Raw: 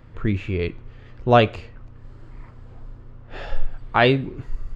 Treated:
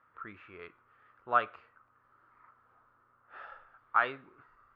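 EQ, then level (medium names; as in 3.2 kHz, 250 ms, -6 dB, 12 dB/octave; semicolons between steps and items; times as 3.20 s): band-pass filter 1.3 kHz, Q 5.2; distance through air 76 m; 0.0 dB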